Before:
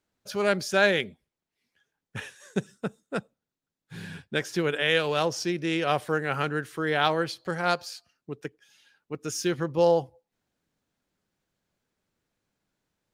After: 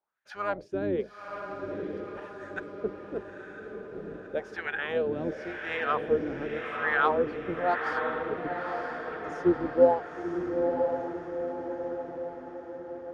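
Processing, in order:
sub-octave generator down 2 octaves, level +3 dB
parametric band 260 Hz −3 dB 0.33 octaves
LFO wah 0.91 Hz 280–1,800 Hz, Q 4.4
pitch-shifted copies added −12 semitones −14 dB
feedback delay with all-pass diffusion 965 ms, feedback 56%, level −4.5 dB
level +5.5 dB

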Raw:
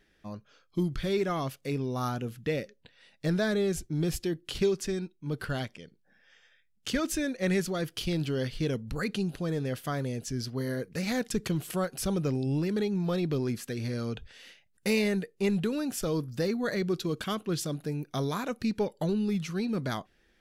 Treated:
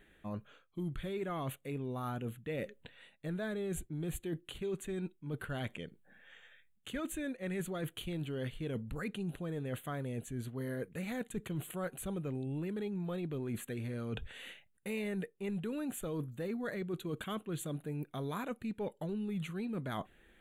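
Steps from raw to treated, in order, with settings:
reversed playback
downward compressor 6 to 1, threshold −40 dBFS, peak gain reduction 17 dB
reversed playback
Butterworth band-reject 5,200 Hz, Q 1.4
level +3.5 dB

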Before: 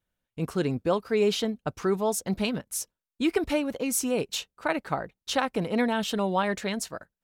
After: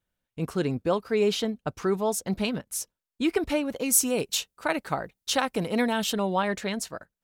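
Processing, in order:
0:03.76–0:06.13: high-shelf EQ 5,000 Hz +9 dB

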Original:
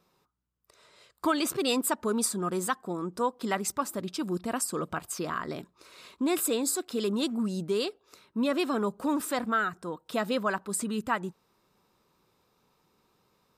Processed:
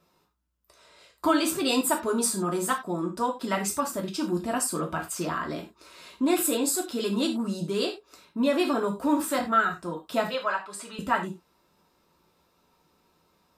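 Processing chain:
0:10.27–0:10.99: three-way crossover with the lows and the highs turned down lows −19 dB, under 520 Hz, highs −14 dB, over 5,500 Hz
reverb whose tail is shaped and stops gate 120 ms falling, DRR −0.5 dB

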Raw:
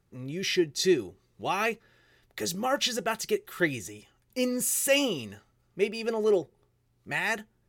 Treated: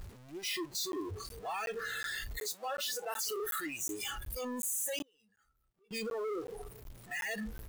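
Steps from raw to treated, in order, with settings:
sign of each sample alone
0:02.40–0:03.28: high-pass filter 250 Hz 24 dB per octave
noise reduction from a noise print of the clip's start 20 dB
0:05.02–0:05.91: gate with flip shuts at −42 dBFS, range −32 dB
regular buffer underruns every 0.37 s, samples 512, zero, from 0:00.92
0:06.41–0:07.11: saturating transformer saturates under 67 Hz
level −4.5 dB

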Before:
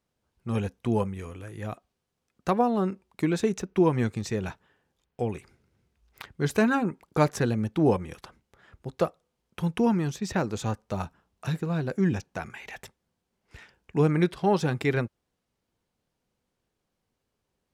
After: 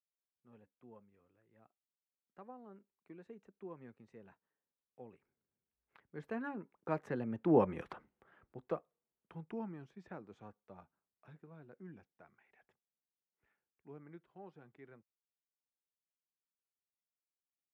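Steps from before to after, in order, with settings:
source passing by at 0:07.85, 14 m/s, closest 2.9 metres
three-way crossover with the lows and the highs turned down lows −12 dB, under 160 Hz, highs −22 dB, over 2,500 Hz

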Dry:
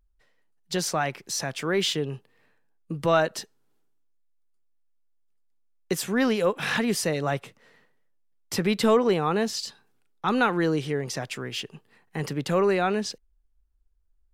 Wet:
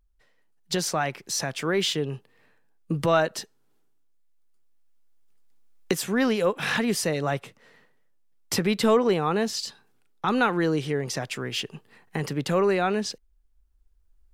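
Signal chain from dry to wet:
camcorder AGC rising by 5.2 dB per second

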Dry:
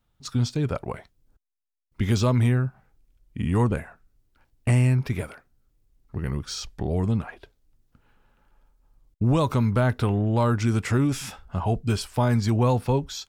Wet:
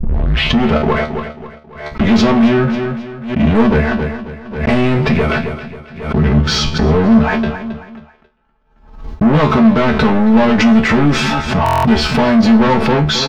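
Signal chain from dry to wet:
turntable start at the beginning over 0.72 s
high-pass filter 52 Hz 6 dB per octave
comb filter 4.6 ms, depth 98%
leveller curve on the samples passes 5
high-frequency loss of the air 230 metres
tuned comb filter 75 Hz, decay 0.23 s, harmonics all, mix 90%
repeating echo 270 ms, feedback 33%, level −16 dB
in parallel at −2 dB: compressor whose output falls as the input rises −32 dBFS, ratio −1
on the sum: buffer that repeats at 0:11.64, samples 1,024, times 8
background raised ahead of every attack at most 85 dB per second
level +7 dB

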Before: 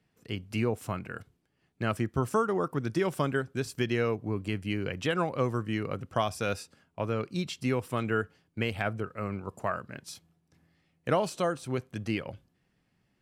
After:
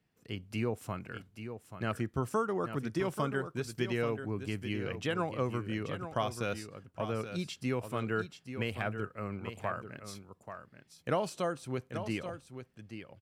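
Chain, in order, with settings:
single-tap delay 834 ms −9.5 dB
level −4.5 dB

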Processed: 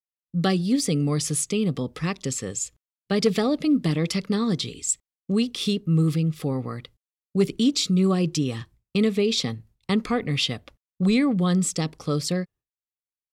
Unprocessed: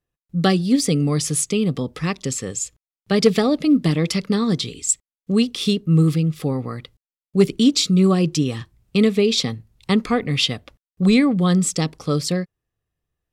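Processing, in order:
downward expander −42 dBFS
in parallel at −2 dB: brickwall limiter −14.5 dBFS, peak gain reduction 10.5 dB
on the sum: level −8 dB

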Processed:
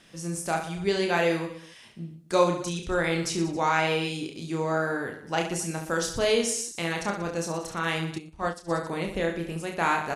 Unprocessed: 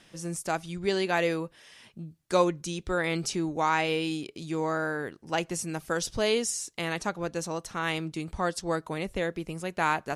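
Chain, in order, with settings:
reverse bouncing-ball delay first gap 30 ms, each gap 1.3×, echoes 5
0:08.18–0:08.71: expander for the loud parts 2.5 to 1, over −36 dBFS

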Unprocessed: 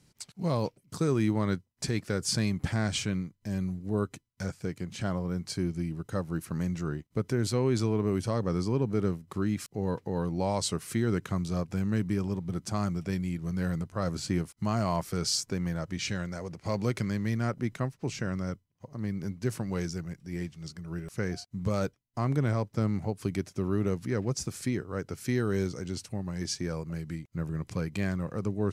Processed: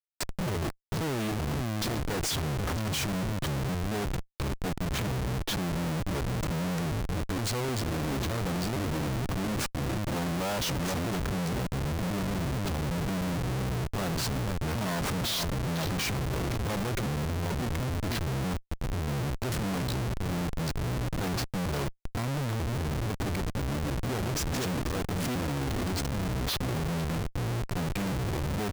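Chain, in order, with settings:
pitch shifter gated in a rhythm −5.5 semitones, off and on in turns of 461 ms
single-tap delay 484 ms −14 dB
comparator with hysteresis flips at −41.5 dBFS
level +1.5 dB

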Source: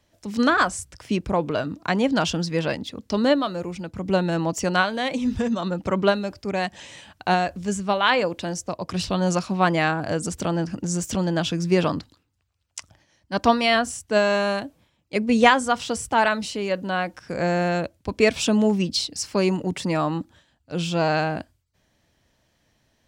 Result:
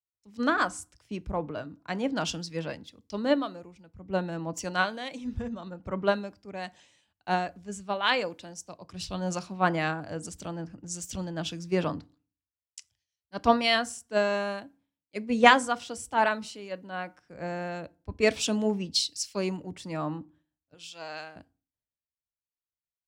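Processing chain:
0:20.74–0:21.36: high-pass filter 890 Hz 6 dB per octave
feedback delay network reverb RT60 0.49 s, low-frequency decay 1.4×, high-frequency decay 0.6×, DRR 17 dB
multiband upward and downward expander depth 100%
level −9 dB

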